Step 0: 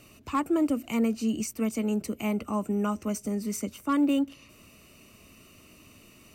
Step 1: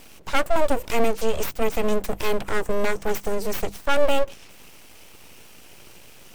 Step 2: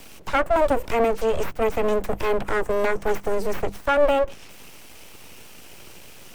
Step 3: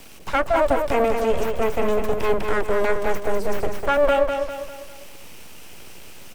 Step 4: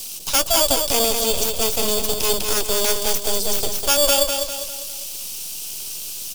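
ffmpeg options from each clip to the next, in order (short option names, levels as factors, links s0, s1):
-af "aeval=exprs='abs(val(0))':c=same,bandreject=f=50:t=h:w=6,bandreject=f=100:t=h:w=6,bandreject=f=150:t=h:w=6,bandreject=f=200:t=h:w=6,volume=2.82"
-filter_complex "[0:a]acrossover=split=160|960|2300[s0][s1][s2][s3];[s0]aeval=exprs='0.075*(abs(mod(val(0)/0.075+3,4)-2)-1)':c=same[s4];[s3]acompressor=threshold=0.00501:ratio=5[s5];[s4][s1][s2][s5]amix=inputs=4:normalize=0,volume=1.41"
-af "aecho=1:1:200|400|600|800|1000:0.531|0.234|0.103|0.0452|0.0199"
-filter_complex "[0:a]asplit=2[s0][s1];[s1]acrusher=samples=11:mix=1:aa=0.000001,volume=0.473[s2];[s0][s2]amix=inputs=2:normalize=0,aexciter=amount=12.3:drive=4:freq=2900,volume=0.501"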